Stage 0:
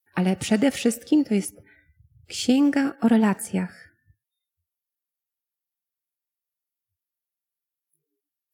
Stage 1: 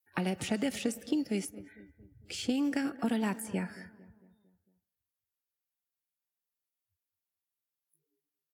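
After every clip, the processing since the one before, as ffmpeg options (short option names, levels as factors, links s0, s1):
-filter_complex "[0:a]acrossover=split=250|2500[s0][s1][s2];[s0]acompressor=threshold=0.02:ratio=4[s3];[s1]acompressor=threshold=0.0316:ratio=4[s4];[s2]acompressor=threshold=0.0126:ratio=4[s5];[s3][s4][s5]amix=inputs=3:normalize=0,asplit=2[s6][s7];[s7]adelay=226,lowpass=f=1300:p=1,volume=0.141,asplit=2[s8][s9];[s9]adelay=226,lowpass=f=1300:p=1,volume=0.52,asplit=2[s10][s11];[s11]adelay=226,lowpass=f=1300:p=1,volume=0.52,asplit=2[s12][s13];[s13]adelay=226,lowpass=f=1300:p=1,volume=0.52,asplit=2[s14][s15];[s15]adelay=226,lowpass=f=1300:p=1,volume=0.52[s16];[s6][s8][s10][s12][s14][s16]amix=inputs=6:normalize=0,volume=0.708"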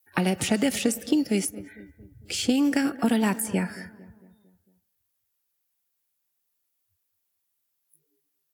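-af "highshelf=f=7100:g=6.5,volume=2.51"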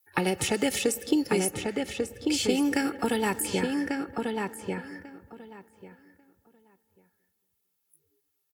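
-filter_complex "[0:a]aecho=1:1:2.3:0.54,asplit=2[s0][s1];[s1]adelay=1143,lowpass=f=2900:p=1,volume=0.668,asplit=2[s2][s3];[s3]adelay=1143,lowpass=f=2900:p=1,volume=0.17,asplit=2[s4][s5];[s5]adelay=1143,lowpass=f=2900:p=1,volume=0.17[s6];[s2][s4][s6]amix=inputs=3:normalize=0[s7];[s0][s7]amix=inputs=2:normalize=0,volume=0.841"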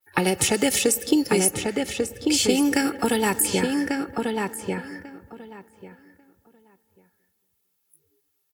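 -af "adynamicequalizer=threshold=0.00631:dfrequency=4500:dqfactor=0.7:tfrequency=4500:tqfactor=0.7:attack=5:release=100:ratio=0.375:range=2.5:mode=boostabove:tftype=highshelf,volume=1.68"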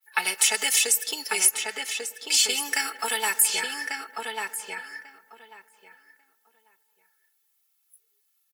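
-af "highpass=1200,aecho=1:1:4.6:0.87"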